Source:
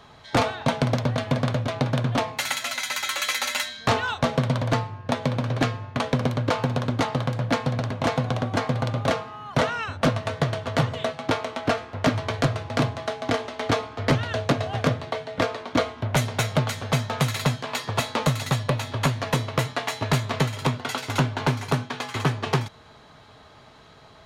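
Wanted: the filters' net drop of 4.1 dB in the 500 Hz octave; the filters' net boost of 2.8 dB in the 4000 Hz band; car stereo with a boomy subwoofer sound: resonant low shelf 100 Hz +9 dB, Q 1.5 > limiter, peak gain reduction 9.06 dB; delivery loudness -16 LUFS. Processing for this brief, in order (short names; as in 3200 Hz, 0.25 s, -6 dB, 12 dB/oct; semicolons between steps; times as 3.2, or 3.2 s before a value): resonant low shelf 100 Hz +9 dB, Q 1.5; bell 500 Hz -5 dB; bell 4000 Hz +3.5 dB; gain +12.5 dB; limiter -4 dBFS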